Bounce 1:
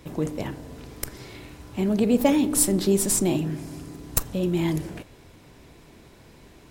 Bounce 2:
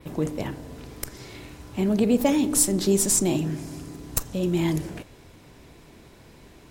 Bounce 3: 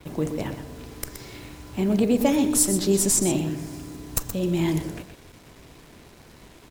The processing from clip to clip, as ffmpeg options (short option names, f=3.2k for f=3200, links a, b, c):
-filter_complex "[0:a]adynamicequalizer=threshold=0.00708:dfrequency=6500:dqfactor=1.5:tfrequency=6500:tqfactor=1.5:attack=5:release=100:ratio=0.375:range=3:mode=boostabove:tftype=bell,asplit=2[a][b];[b]alimiter=limit=-12.5dB:level=0:latency=1:release=365,volume=0dB[c];[a][c]amix=inputs=2:normalize=0,volume=-5.5dB"
-filter_complex "[0:a]acrusher=bits=7:mix=0:aa=0.5,asplit=2[a][b];[b]aecho=0:1:123:0.335[c];[a][c]amix=inputs=2:normalize=0"